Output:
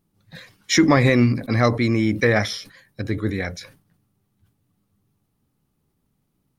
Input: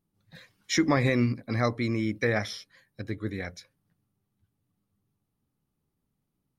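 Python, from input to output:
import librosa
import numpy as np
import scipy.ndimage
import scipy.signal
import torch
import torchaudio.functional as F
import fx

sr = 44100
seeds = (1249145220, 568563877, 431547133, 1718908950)

p1 = 10.0 ** (-22.0 / 20.0) * np.tanh(x / 10.0 ** (-22.0 / 20.0))
p2 = x + F.gain(torch.from_numpy(p1), -10.5).numpy()
p3 = fx.sustainer(p2, sr, db_per_s=130.0)
y = F.gain(torch.from_numpy(p3), 6.5).numpy()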